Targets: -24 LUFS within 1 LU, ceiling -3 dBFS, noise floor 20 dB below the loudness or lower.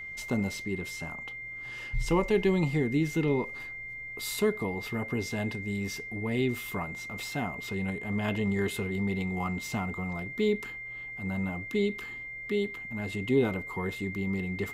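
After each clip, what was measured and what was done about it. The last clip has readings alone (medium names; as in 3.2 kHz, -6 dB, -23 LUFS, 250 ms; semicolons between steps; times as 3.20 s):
steady tone 2.1 kHz; tone level -38 dBFS; loudness -31.5 LUFS; peak level -14.0 dBFS; loudness target -24.0 LUFS
-> band-stop 2.1 kHz, Q 30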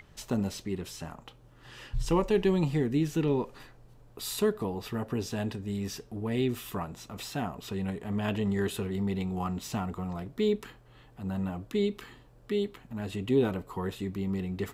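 steady tone not found; loudness -32.0 LUFS; peak level -14.5 dBFS; loudness target -24.0 LUFS
-> trim +8 dB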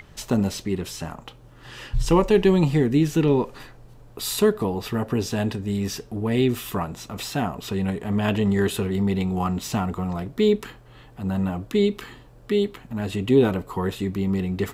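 loudness -24.0 LUFS; peak level -6.5 dBFS; noise floor -48 dBFS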